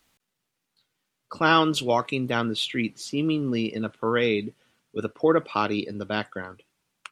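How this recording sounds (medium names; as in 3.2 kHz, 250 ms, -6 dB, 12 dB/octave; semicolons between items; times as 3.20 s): noise floor -81 dBFS; spectral tilt -3.5 dB/octave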